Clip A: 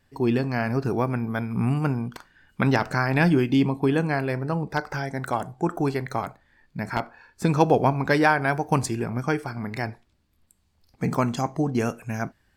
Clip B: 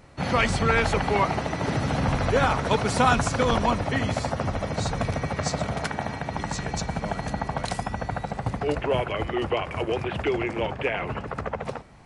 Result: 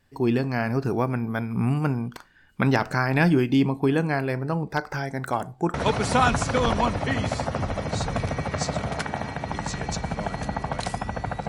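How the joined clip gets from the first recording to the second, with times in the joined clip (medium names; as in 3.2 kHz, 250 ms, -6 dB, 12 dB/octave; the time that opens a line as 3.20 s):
clip A
5.74 s: go over to clip B from 2.59 s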